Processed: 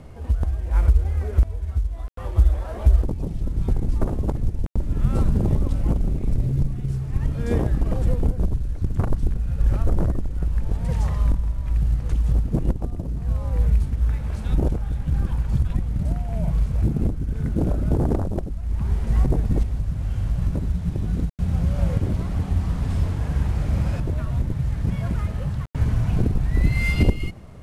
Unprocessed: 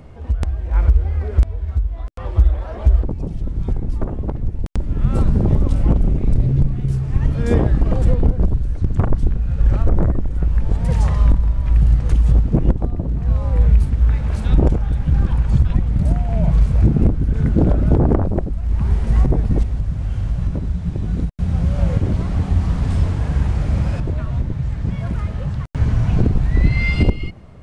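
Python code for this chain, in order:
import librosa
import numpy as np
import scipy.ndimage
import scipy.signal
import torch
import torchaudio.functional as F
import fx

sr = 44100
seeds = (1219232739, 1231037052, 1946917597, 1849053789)

y = fx.cvsd(x, sr, bps=64000)
y = fx.rider(y, sr, range_db=10, speed_s=2.0)
y = y * librosa.db_to_amplitude(-5.5)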